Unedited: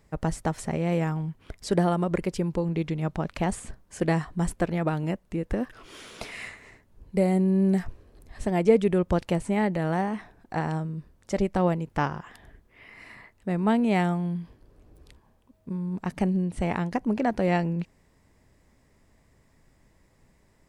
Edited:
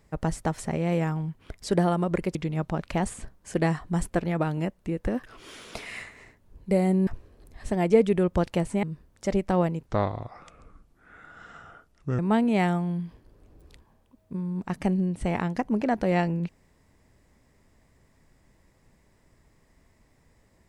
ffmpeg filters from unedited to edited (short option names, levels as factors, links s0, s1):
-filter_complex "[0:a]asplit=6[s0][s1][s2][s3][s4][s5];[s0]atrim=end=2.352[s6];[s1]atrim=start=2.808:end=7.532[s7];[s2]atrim=start=7.818:end=9.582[s8];[s3]atrim=start=10.888:end=11.924[s9];[s4]atrim=start=11.92:end=13.55,asetpts=PTS-STARTPTS,asetrate=30870,aresample=44100[s10];[s5]atrim=start=13.546[s11];[s6][s7]acrossfade=d=0.004:c1=hsin:c2=hsin[s12];[s12][s8]acrossfade=d=0.004:c1=hsin:c2=hsin[s13];[s13][s9]acrossfade=d=0.004:c1=hsin:c2=hsin[s14];[s14][s10]acrossfade=d=0.004:c1=hsin:c2=hsin[s15];[s15][s11]acrossfade=d=0.004:c1=hsin:c2=hsin"